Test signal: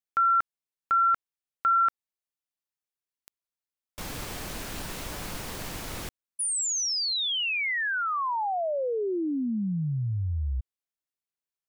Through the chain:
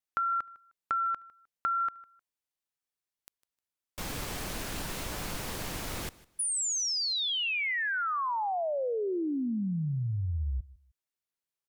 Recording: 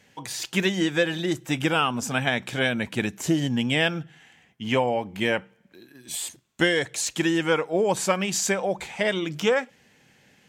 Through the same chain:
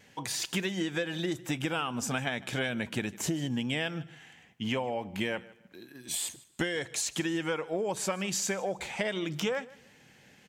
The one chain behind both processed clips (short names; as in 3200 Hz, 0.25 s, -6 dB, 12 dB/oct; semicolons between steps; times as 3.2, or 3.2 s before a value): vibrato 0.67 Hz 7.1 cents; compressor 5:1, threshold -29 dBFS; on a send: feedback echo 0.154 s, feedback 25%, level -21 dB